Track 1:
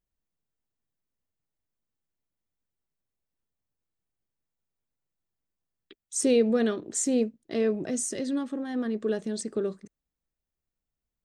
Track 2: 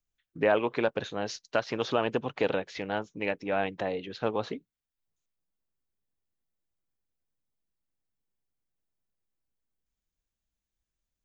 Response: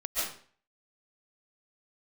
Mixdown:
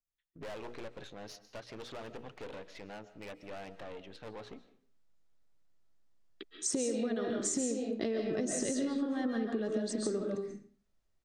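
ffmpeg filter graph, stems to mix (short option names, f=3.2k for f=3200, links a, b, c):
-filter_complex "[0:a]lowpass=6.4k,equalizer=f=2.6k:t=o:w=0.77:g=-3,acompressor=threshold=-33dB:ratio=3,adelay=500,volume=2dB,asplit=2[a][b];[b]volume=-4dB[c];[1:a]bandreject=f=60:t=h:w=6,bandreject=f=120:t=h:w=6,bandreject=f=180:t=h:w=6,bandreject=f=240:t=h:w=6,bandreject=f=300:t=h:w=6,bandreject=f=360:t=h:w=6,bandreject=f=420:t=h:w=6,bandreject=f=480:t=h:w=6,aeval=exprs='(tanh(44.7*val(0)+0.6)-tanh(0.6))/44.7':c=same,volume=-8.5dB,asplit=2[d][e];[e]volume=-21dB[f];[2:a]atrim=start_sample=2205[g];[c][f]amix=inputs=2:normalize=0[h];[h][g]afir=irnorm=-1:irlink=0[i];[a][d][i]amix=inputs=3:normalize=0,acompressor=threshold=-30dB:ratio=6"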